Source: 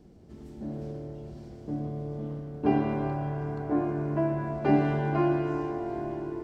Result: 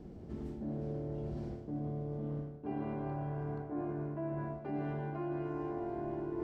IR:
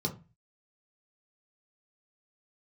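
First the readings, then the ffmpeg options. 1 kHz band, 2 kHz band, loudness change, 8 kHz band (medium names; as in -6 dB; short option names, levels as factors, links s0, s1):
-11.0 dB, -13.0 dB, -10.0 dB, no reading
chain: -af "areverse,acompressor=threshold=0.01:ratio=12,areverse,highshelf=f=3200:g=-11.5,volume=1.78"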